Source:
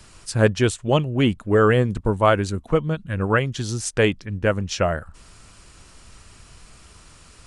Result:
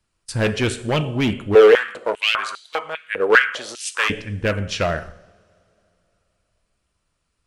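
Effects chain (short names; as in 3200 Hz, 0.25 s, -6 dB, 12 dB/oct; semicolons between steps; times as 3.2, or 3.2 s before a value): bell 6600 Hz -3.5 dB 0.75 oct; gate -37 dBFS, range -25 dB; two-slope reverb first 0.75 s, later 3.2 s, from -22 dB, DRR 10.5 dB; hard clip -15.5 dBFS, distortion -10 dB; dynamic EQ 2400 Hz, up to +6 dB, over -39 dBFS, Q 1.1; 1.55–4.1 stepped high-pass 5 Hz 450–3800 Hz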